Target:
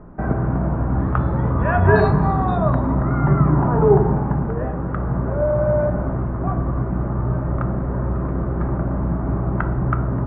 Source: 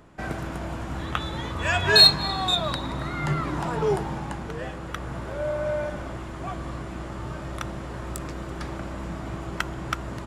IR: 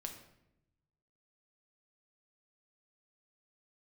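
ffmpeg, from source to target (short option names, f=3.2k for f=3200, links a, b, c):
-filter_complex "[0:a]lowpass=f=1.4k:w=0.5412,lowpass=f=1.4k:w=1.3066,asplit=2[a][b];[1:a]atrim=start_sample=2205,asetrate=52920,aresample=44100,lowshelf=f=420:g=10[c];[b][c]afir=irnorm=-1:irlink=0,volume=6dB[d];[a][d]amix=inputs=2:normalize=0"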